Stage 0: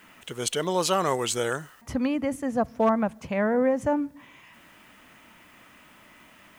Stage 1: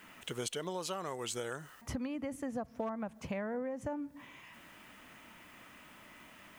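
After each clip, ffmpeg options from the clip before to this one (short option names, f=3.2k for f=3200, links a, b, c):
-af "acompressor=threshold=-32dB:ratio=16,volume=-2.5dB"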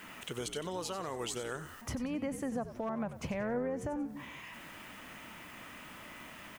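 -filter_complex "[0:a]alimiter=level_in=9.5dB:limit=-24dB:level=0:latency=1:release=285,volume=-9.5dB,asplit=5[a][b][c][d][e];[b]adelay=92,afreqshift=-72,volume=-11.5dB[f];[c]adelay=184,afreqshift=-144,volume=-20.6dB[g];[d]adelay=276,afreqshift=-216,volume=-29.7dB[h];[e]adelay=368,afreqshift=-288,volume=-38.9dB[i];[a][f][g][h][i]amix=inputs=5:normalize=0,volume=6dB"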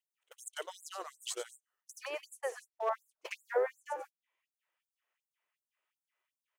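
-af "agate=range=-45dB:threshold=-36dB:ratio=16:detection=peak,afftfilt=real='re*gte(b*sr/1024,320*pow(7200/320,0.5+0.5*sin(2*PI*2.7*pts/sr)))':imag='im*gte(b*sr/1024,320*pow(7200/320,0.5+0.5*sin(2*PI*2.7*pts/sr)))':win_size=1024:overlap=0.75,volume=8dB"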